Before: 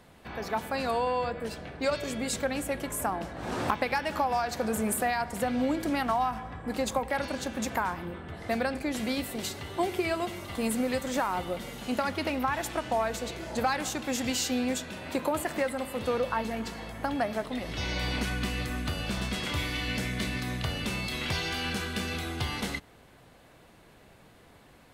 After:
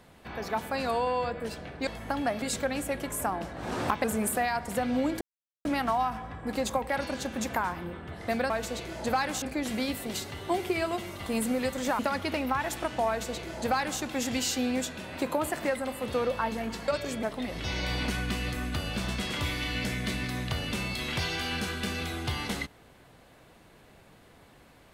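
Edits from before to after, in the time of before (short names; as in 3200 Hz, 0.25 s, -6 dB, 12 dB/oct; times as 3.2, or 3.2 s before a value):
1.87–2.22 swap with 16.81–17.36
3.84–4.69 cut
5.86 insert silence 0.44 s
11.28–11.92 cut
13.01–13.93 copy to 8.71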